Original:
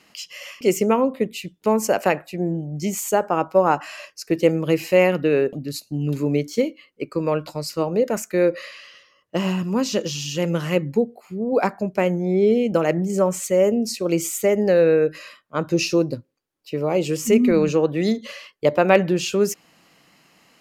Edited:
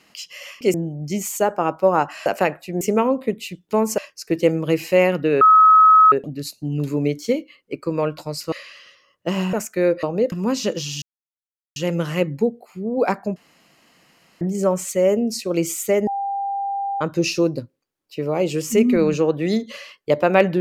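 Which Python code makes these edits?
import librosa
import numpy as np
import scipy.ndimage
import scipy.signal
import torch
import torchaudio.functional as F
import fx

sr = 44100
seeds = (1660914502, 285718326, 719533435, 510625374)

y = fx.edit(x, sr, fx.swap(start_s=0.74, length_s=1.17, other_s=2.46, other_length_s=1.52),
    fx.insert_tone(at_s=5.41, length_s=0.71, hz=1280.0, db=-7.5),
    fx.swap(start_s=7.81, length_s=0.29, other_s=8.6, other_length_s=1.01),
    fx.insert_silence(at_s=10.31, length_s=0.74),
    fx.room_tone_fill(start_s=11.91, length_s=1.05),
    fx.bleep(start_s=14.62, length_s=0.94, hz=795.0, db=-21.5), tone=tone)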